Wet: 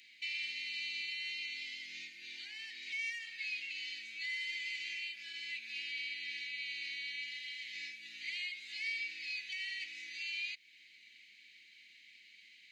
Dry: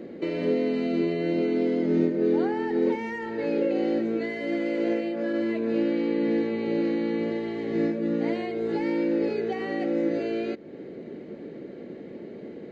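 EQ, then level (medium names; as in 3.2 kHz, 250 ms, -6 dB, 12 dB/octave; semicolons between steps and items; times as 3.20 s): elliptic high-pass 2.3 kHz, stop band 50 dB; +6.5 dB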